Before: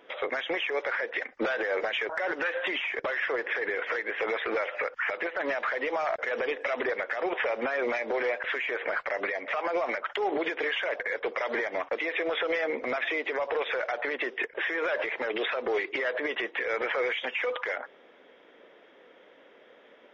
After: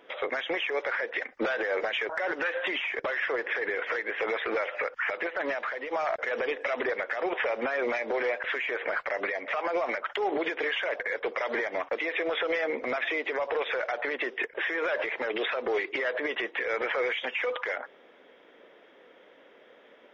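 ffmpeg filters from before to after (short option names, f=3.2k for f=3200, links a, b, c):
-filter_complex "[0:a]asplit=2[a][b];[a]atrim=end=5.91,asetpts=PTS-STARTPTS,afade=t=out:st=5.42:d=0.49:silence=0.421697[c];[b]atrim=start=5.91,asetpts=PTS-STARTPTS,afade=t=in:d=0.004:c=hsin:silence=0.421697[d];[c][d]concat=n=2:v=0:a=1"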